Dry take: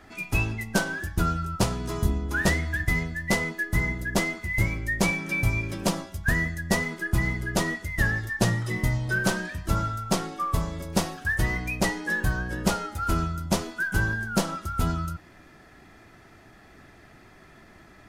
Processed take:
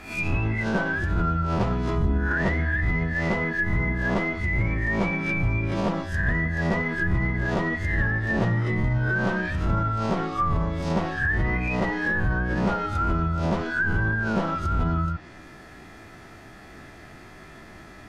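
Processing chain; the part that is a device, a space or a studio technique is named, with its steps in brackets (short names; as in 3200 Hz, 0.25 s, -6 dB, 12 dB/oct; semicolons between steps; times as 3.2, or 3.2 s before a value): spectral swells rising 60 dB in 0.43 s; clipper into limiter (hard clip -13 dBFS, distortion -25 dB; limiter -20 dBFS, peak gain reduction 7 dB); treble ducked by the level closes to 2000 Hz, closed at -25 dBFS; gain +5 dB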